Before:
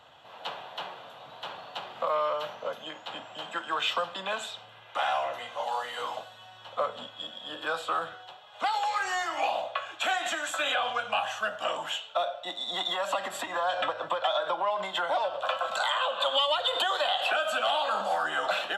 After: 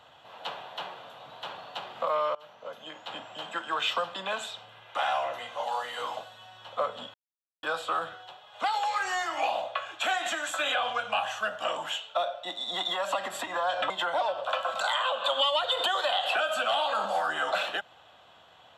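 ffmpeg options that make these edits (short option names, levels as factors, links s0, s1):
-filter_complex "[0:a]asplit=5[s0][s1][s2][s3][s4];[s0]atrim=end=2.35,asetpts=PTS-STARTPTS,afade=t=out:st=2.346:d=0.004:c=hsin:silence=0.0707946[s5];[s1]atrim=start=2.35:end=7.14,asetpts=PTS-STARTPTS,afade=t=in:d=0.78:silence=0.0707946,afade=t=out:st=4.786:d=0.004:c=hsin[s6];[s2]atrim=start=7.14:end=7.63,asetpts=PTS-STARTPTS,volume=0[s7];[s3]atrim=start=7.63:end=13.902,asetpts=PTS-STARTPTS,afade=t=in:d=0.004:c=hsin[s8];[s4]atrim=start=14.858[s9];[s5][s6][s7][s8]concat=n=4:v=0:a=1[s10];[s10][s9]acrossfade=d=0.004:c1=hsin:c2=hsin"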